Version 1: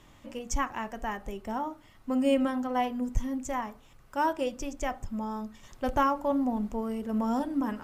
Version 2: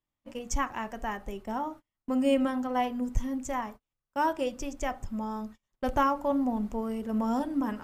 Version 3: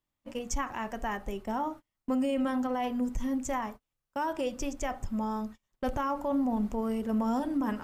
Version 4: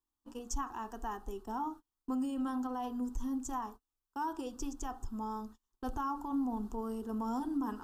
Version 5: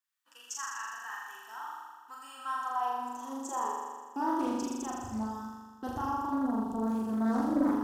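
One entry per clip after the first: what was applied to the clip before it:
gate -43 dBFS, range -34 dB
peak limiter -24.5 dBFS, peak gain reduction 10.5 dB; trim +2 dB
static phaser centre 580 Hz, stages 6; trim -3.5 dB
high-pass sweep 1.7 kHz -> 110 Hz, 2.08–5.16 s; flutter echo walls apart 7 m, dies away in 1.5 s; loudspeaker Doppler distortion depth 0.36 ms

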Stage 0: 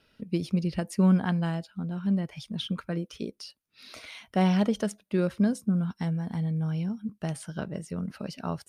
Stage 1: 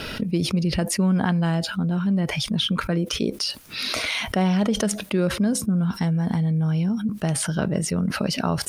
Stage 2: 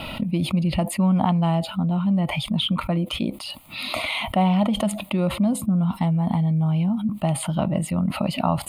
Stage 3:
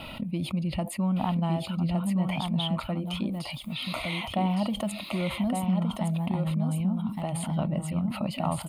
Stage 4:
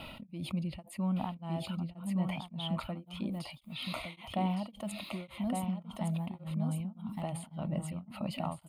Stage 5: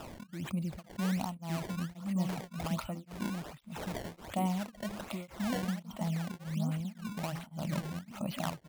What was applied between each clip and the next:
level flattener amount 70%
peaking EQ 510 Hz +8.5 dB 2.4 oct; static phaser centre 1.6 kHz, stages 6
delay 1163 ms -4.5 dB; trim -7.5 dB
tremolo of two beating tones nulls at 1.8 Hz; trim -5 dB
decimation with a swept rate 20×, swing 160% 1.3 Hz

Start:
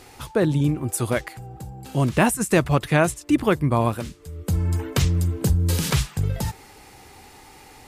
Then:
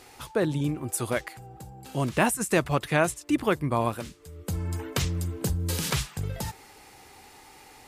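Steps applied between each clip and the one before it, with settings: bass shelf 250 Hz -6.5 dB; trim -3 dB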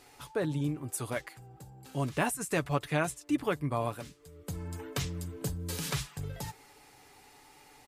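comb 7 ms, depth 41%; trim -7 dB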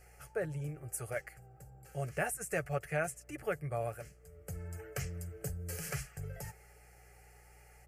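mains buzz 60 Hz, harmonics 23, -58 dBFS -7 dB/octave; static phaser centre 1 kHz, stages 6; trim -2 dB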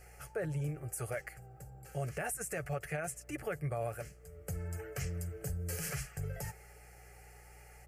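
peak limiter -31.5 dBFS, peak gain reduction 11 dB; trim +3.5 dB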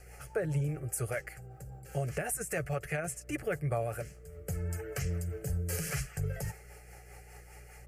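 rotary cabinet horn 5 Hz; trim +6 dB

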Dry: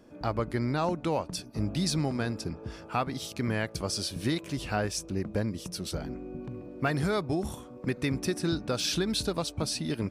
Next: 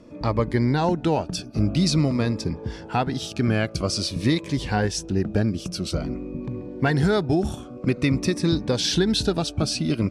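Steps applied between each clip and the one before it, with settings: distance through air 58 m; Shepard-style phaser falling 0.49 Hz; trim +9 dB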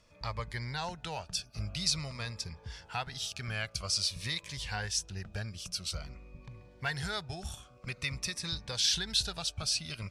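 amplifier tone stack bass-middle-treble 10-0-10; trim -2 dB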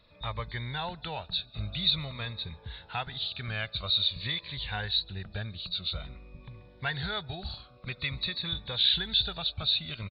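knee-point frequency compression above 3.4 kHz 4:1; speakerphone echo 140 ms, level -29 dB; trim +2 dB

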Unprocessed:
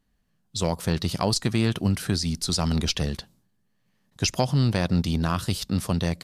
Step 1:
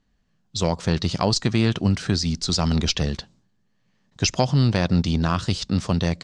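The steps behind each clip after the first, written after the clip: steep low-pass 7.4 kHz 36 dB/octave; trim +3 dB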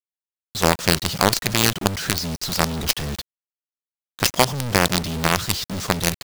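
bass shelf 270 Hz -4.5 dB; companded quantiser 2-bit; trim -1 dB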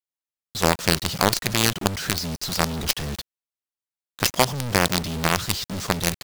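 vibrato 7.3 Hz 7.7 cents; trim -2 dB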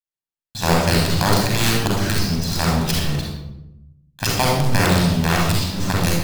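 in parallel at -4 dB: bit crusher 5-bit; on the sum: reverberation RT60 0.90 s, pre-delay 38 ms, DRR -4 dB; trim -9.5 dB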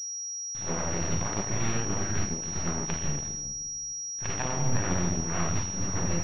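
half-wave rectifier; class-D stage that switches slowly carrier 5.7 kHz; trim -8 dB

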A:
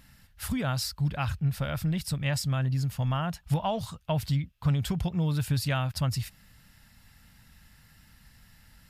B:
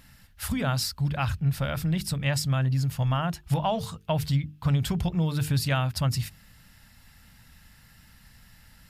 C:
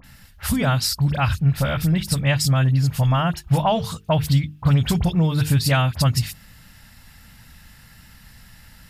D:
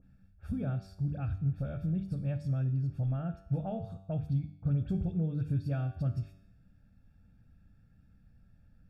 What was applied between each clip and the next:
hum notches 50/100/150/200/250/300/350/400/450 Hz; trim +3 dB
phase dispersion highs, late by 42 ms, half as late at 2.4 kHz; trim +7 dB
boxcar filter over 44 samples; feedback comb 96 Hz, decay 0.78 s, harmonics all, mix 70%; trim -3 dB

